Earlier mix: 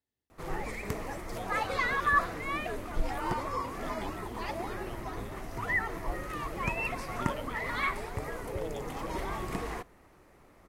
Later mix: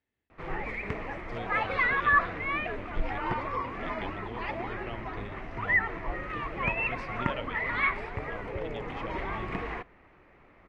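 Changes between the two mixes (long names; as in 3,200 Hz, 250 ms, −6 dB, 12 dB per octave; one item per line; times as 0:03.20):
speech +5.0 dB
master: add low-pass with resonance 2,400 Hz, resonance Q 1.9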